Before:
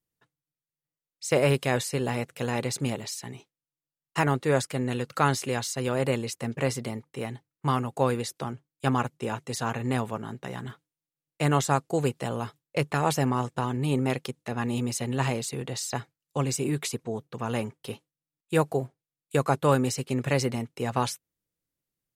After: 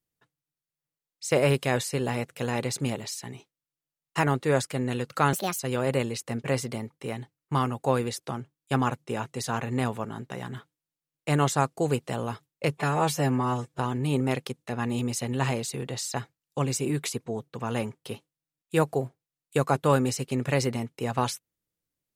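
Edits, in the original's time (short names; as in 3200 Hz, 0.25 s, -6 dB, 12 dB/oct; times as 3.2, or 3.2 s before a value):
5.33–5.72 speed 149%
12.9–13.58 stretch 1.5×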